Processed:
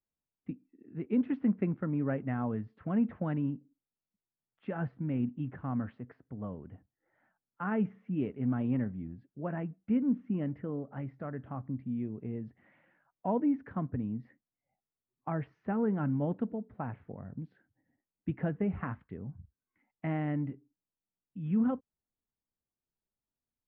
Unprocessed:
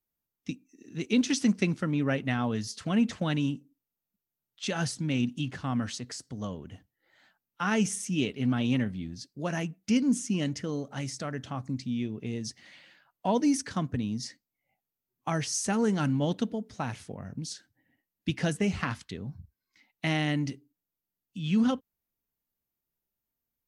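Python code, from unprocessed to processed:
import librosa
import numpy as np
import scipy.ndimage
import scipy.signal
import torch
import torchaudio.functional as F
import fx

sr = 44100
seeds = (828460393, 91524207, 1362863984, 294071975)

y = scipy.signal.sosfilt(scipy.signal.bessel(6, 1200.0, 'lowpass', norm='mag', fs=sr, output='sos'), x)
y = F.gain(torch.from_numpy(y), -3.5).numpy()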